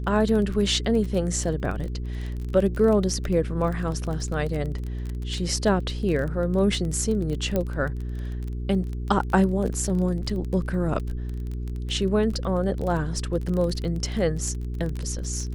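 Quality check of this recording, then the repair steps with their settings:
surface crackle 21 per second −29 dBFS
mains hum 60 Hz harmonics 7 −30 dBFS
0:07.56: click −12 dBFS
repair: click removal
hum removal 60 Hz, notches 7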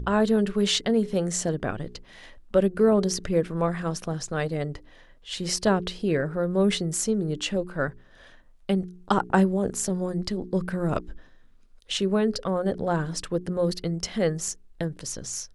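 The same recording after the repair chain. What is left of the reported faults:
none of them is left

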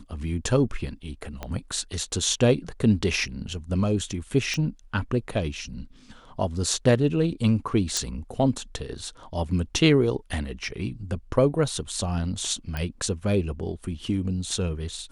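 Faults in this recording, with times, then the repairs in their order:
0:01.43: click −18 dBFS
0:04.54: click −16 dBFS
0:07.97: click
0:12.77: click −17 dBFS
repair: click removal

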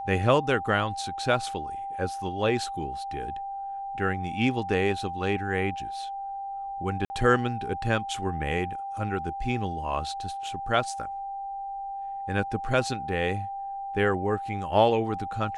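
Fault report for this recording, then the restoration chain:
whistle 790 Hz −32 dBFS
0:07.05–0:07.10: drop-out 50 ms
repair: notch filter 790 Hz, Q 30
repair the gap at 0:07.05, 50 ms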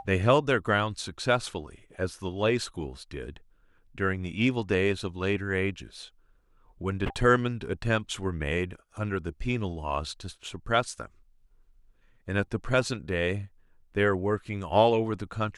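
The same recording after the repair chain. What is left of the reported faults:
none of them is left

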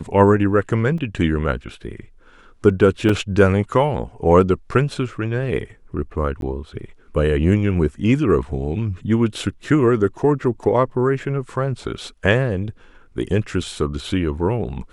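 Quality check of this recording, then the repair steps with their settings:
0:00.98: drop-out 3.1 ms
0:03.09: drop-out 4 ms
0:06.41–0:06.42: drop-out 12 ms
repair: repair the gap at 0:00.98, 3.1 ms
repair the gap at 0:03.09, 4 ms
repair the gap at 0:06.41, 12 ms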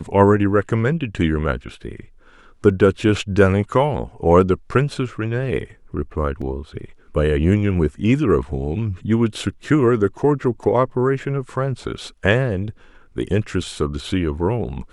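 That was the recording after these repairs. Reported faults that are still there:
none of them is left

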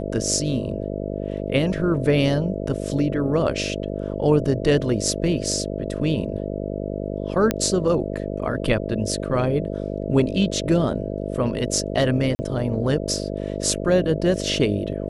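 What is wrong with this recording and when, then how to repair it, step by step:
mains buzz 50 Hz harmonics 13 −28 dBFS
0:07.51: click −6 dBFS
0:12.35–0:12.39: drop-out 40 ms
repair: click removal
hum removal 50 Hz, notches 13
repair the gap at 0:12.35, 40 ms

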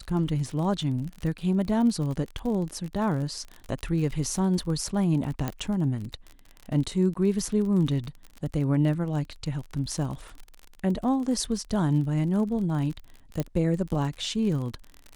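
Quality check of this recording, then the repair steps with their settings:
surface crackle 41 per second −33 dBFS
0:05.48: click −15 dBFS
0:07.14–0:07.15: drop-out 14 ms
0:13.40: click −14 dBFS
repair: click removal
repair the gap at 0:07.14, 14 ms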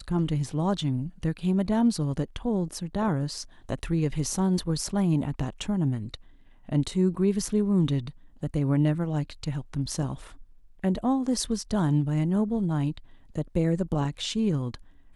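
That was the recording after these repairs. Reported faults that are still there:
0:13.40: click

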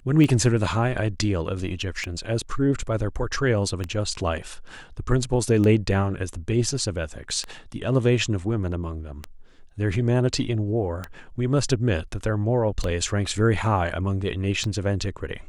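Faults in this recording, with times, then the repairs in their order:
scratch tick 33 1/3 rpm −14 dBFS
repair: click removal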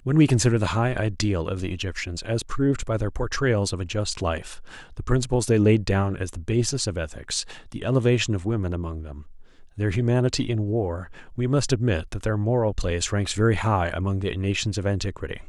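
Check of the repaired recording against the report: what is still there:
none of them is left

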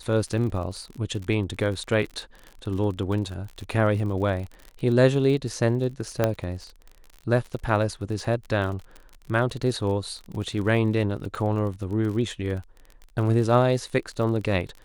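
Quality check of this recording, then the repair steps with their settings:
surface crackle 44 per second −33 dBFS
0:06.24: click −8 dBFS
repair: click removal

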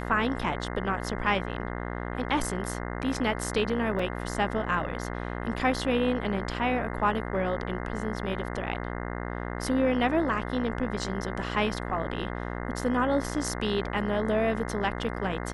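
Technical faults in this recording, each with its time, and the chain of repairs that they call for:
mains buzz 60 Hz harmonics 35 −34 dBFS
0:03.99: drop-out 4.1 ms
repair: hum removal 60 Hz, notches 35
repair the gap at 0:03.99, 4.1 ms

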